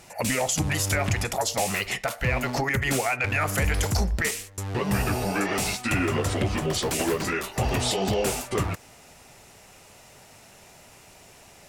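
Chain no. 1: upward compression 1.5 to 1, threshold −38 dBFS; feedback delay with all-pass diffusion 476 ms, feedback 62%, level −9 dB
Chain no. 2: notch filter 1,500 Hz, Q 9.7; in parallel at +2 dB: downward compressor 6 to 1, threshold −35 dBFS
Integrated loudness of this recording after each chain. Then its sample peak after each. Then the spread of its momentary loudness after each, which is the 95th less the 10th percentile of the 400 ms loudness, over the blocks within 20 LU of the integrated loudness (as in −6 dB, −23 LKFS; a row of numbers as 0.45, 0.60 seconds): −25.0, −23.5 LKFS; −12.5, −11.0 dBFS; 18, 20 LU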